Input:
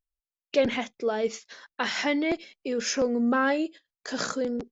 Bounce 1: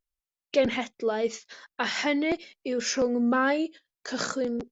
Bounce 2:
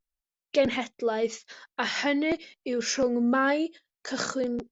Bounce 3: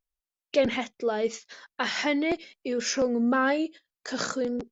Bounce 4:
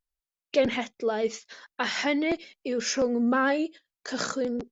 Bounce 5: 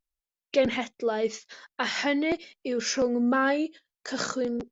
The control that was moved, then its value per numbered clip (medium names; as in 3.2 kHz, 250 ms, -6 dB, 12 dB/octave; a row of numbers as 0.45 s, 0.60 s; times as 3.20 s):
vibrato, rate: 2.6 Hz, 0.33 Hz, 4 Hz, 11 Hz, 1.3 Hz